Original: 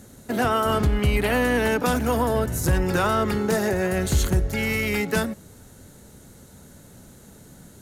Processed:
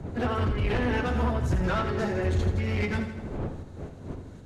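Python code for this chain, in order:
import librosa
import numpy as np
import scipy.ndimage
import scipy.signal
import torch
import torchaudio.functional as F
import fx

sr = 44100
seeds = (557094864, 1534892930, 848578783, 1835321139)

p1 = fx.dmg_wind(x, sr, seeds[0], corner_hz=360.0, level_db=-34.0)
p2 = scipy.signal.sosfilt(scipy.signal.butter(2, 4200.0, 'lowpass', fs=sr, output='sos'), p1)
p3 = fx.peak_eq(p2, sr, hz=90.0, db=10.5, octaves=0.28)
p4 = fx.tremolo_shape(p3, sr, shape='saw_up', hz=2.2, depth_pct=55)
p5 = fx.cheby_harmonics(p4, sr, harmonics=(4, 5, 7, 8), levels_db=(-38, -8, -23, -27), full_scale_db=-5.0)
p6 = fx.low_shelf(p5, sr, hz=150.0, db=4.0)
p7 = fx.stretch_vocoder_free(p6, sr, factor=0.57)
p8 = 10.0 ** (-15.0 / 20.0) * np.tanh(p7 / 10.0 ** (-15.0 / 20.0))
p9 = p8 + fx.echo_feedback(p8, sr, ms=81, feedback_pct=58, wet_db=-9.0, dry=0)
y = p9 * 10.0 ** (-6.0 / 20.0)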